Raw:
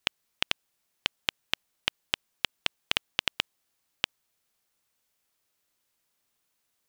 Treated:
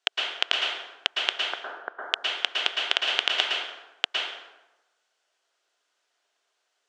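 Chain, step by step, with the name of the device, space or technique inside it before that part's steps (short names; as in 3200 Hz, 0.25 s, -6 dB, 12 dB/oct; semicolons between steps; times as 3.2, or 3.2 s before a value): 1.41–2.02 elliptic low-pass 1600 Hz, stop band 40 dB; phone speaker on a table (speaker cabinet 350–7400 Hz, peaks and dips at 420 Hz +3 dB, 700 Hz +8 dB, 1500 Hz +7 dB, 3200 Hz +5 dB); plate-style reverb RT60 1 s, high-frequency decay 0.65×, pre-delay 0.1 s, DRR -2 dB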